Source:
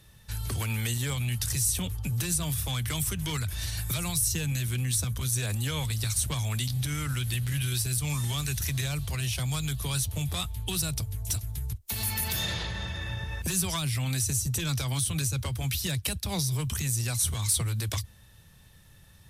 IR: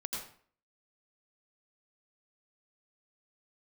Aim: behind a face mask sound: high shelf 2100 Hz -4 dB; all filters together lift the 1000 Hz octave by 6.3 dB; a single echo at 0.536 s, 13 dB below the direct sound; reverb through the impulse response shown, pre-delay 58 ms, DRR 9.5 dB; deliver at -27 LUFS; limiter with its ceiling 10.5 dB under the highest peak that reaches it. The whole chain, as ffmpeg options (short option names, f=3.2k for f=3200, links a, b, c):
-filter_complex "[0:a]equalizer=f=1k:t=o:g=8.5,alimiter=level_in=1dB:limit=-24dB:level=0:latency=1,volume=-1dB,aecho=1:1:536:0.224,asplit=2[a][b];[1:a]atrim=start_sample=2205,adelay=58[c];[b][c]afir=irnorm=-1:irlink=0,volume=-11dB[d];[a][d]amix=inputs=2:normalize=0,highshelf=f=2.1k:g=-4,volume=7dB"